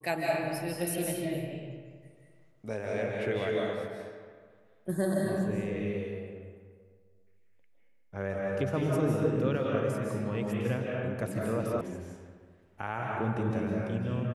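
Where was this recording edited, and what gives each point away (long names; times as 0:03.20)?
0:11.81: cut off before it has died away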